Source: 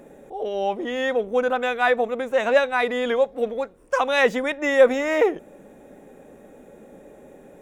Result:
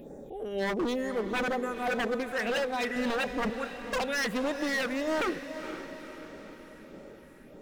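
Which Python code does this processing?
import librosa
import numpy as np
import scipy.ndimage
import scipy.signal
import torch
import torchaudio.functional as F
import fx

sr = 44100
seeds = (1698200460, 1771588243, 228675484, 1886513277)

y = fx.spec_box(x, sr, start_s=0.94, length_s=1.17, low_hz=1300.0, high_hz=4800.0, gain_db=-16)
y = fx.low_shelf(y, sr, hz=340.0, db=12.0, at=(2.96, 3.5))
y = fx.rider(y, sr, range_db=3, speed_s=0.5)
y = fx.phaser_stages(y, sr, stages=4, low_hz=630.0, high_hz=2700.0, hz=1.6, feedback_pct=45)
y = 10.0 ** (-22.5 / 20.0) * (np.abs((y / 10.0 ** (-22.5 / 20.0) + 3.0) % 4.0 - 2.0) - 1.0)
y = fx.echo_diffused(y, sr, ms=483, feedback_pct=53, wet_db=-10)
y = F.gain(torch.from_numpy(y), -2.0).numpy()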